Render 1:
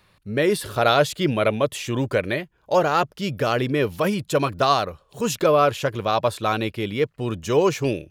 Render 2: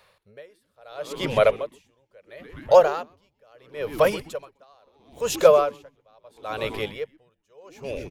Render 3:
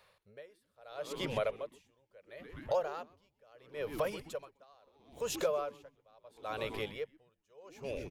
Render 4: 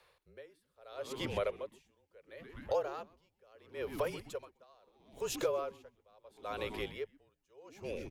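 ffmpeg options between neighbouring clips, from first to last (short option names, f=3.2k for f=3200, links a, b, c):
-filter_complex "[0:a]lowshelf=f=390:t=q:w=3:g=-8.5,asplit=7[a][b][c][d][e][f][g];[b]adelay=127,afreqshift=-150,volume=-15dB[h];[c]adelay=254,afreqshift=-300,volume=-19.3dB[i];[d]adelay=381,afreqshift=-450,volume=-23.6dB[j];[e]adelay=508,afreqshift=-600,volume=-27.9dB[k];[f]adelay=635,afreqshift=-750,volume=-32.2dB[l];[g]adelay=762,afreqshift=-900,volume=-36.5dB[m];[a][h][i][j][k][l][m]amix=inputs=7:normalize=0,aeval=exprs='val(0)*pow(10,-40*(0.5-0.5*cos(2*PI*0.74*n/s))/20)':c=same,volume=1dB"
-af "acompressor=threshold=-27dB:ratio=2.5,volume=-7dB"
-af "afreqshift=-33,volume=-1dB"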